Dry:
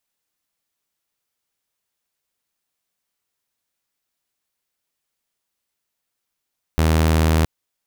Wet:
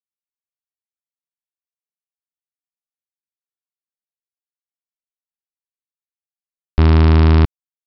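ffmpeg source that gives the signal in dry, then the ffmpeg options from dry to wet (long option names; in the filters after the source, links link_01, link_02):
-f lavfi -i "aevalsrc='0.266*(2*mod(79.7*t,1)-1)':duration=0.67:sample_rate=44100"
-af "lowshelf=frequency=150:gain=10,aresample=11025,acrusher=bits=2:mix=0:aa=0.5,aresample=44100"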